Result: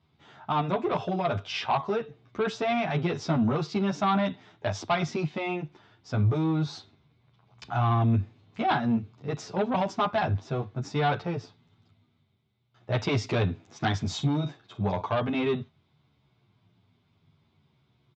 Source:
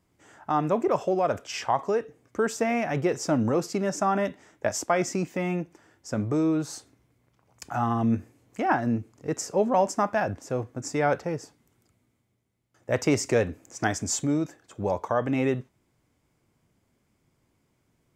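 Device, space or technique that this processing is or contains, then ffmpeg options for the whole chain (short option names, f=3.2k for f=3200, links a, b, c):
barber-pole flanger into a guitar amplifier: -filter_complex "[0:a]asettb=1/sr,asplit=3[a][b][c];[a]atrim=end=14.054[d];[b]atrim=start=14.05:end=15.07,asetpts=PTS-STARTPTS,afade=t=in:d=0.004:c=qsin,afade=t=out:st=1.016:d=0.004:c=qsin,asplit=2[e][f];[f]adelay=45,volume=-12dB[g];[e][g]amix=inputs=2:normalize=0,atrim=end_sample=44982[h];[c]atrim=start=15.066[i];[d][h]acrossfade=d=0.004:c1=hsin:c2=qsin[j];[j][i]acrossfade=d=0.004:c1=qsin:c2=hsin,asplit=2[k][l];[l]adelay=10.3,afreqshift=-0.57[m];[k][m]amix=inputs=2:normalize=1,asoftclip=type=tanh:threshold=-23dB,highpass=88,equalizer=f=100:t=q:w=4:g=8,equalizer=f=150:t=q:w=4:g=5,equalizer=f=300:t=q:w=4:g=-7,equalizer=f=520:t=q:w=4:g=-9,equalizer=f=1.8k:t=q:w=4:g=-6,equalizer=f=3.7k:t=q:w=4:g=10,lowpass=f=4.3k:w=0.5412,lowpass=f=4.3k:w=1.3066,volume=6dB"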